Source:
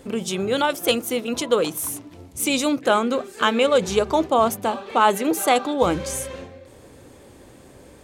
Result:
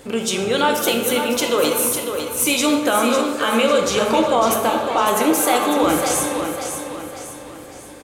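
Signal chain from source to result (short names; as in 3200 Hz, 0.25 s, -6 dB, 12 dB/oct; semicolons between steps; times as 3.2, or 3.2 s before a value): low shelf 490 Hz -7 dB; limiter -15 dBFS, peak gain reduction 9.5 dB; in parallel at -5 dB: soft clip -16 dBFS, distortion -22 dB; on the sum: feedback echo 0.552 s, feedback 43%, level -7.5 dB; plate-style reverb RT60 1.5 s, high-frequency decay 0.5×, DRR 2.5 dB; gain +2.5 dB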